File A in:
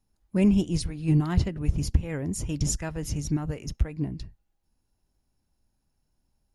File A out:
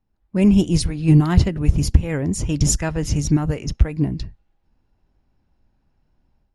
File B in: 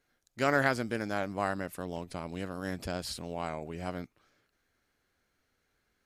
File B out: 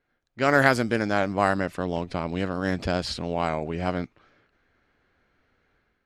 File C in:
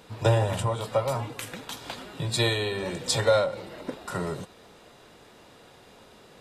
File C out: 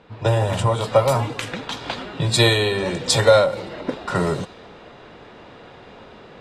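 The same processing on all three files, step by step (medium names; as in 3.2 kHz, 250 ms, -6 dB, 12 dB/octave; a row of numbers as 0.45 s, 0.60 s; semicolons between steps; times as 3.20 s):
level rider gain up to 8.5 dB; level-controlled noise filter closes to 2.7 kHz, open at -15.5 dBFS; trim +1.5 dB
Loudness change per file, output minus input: +8.0 LU, +8.5 LU, +7.5 LU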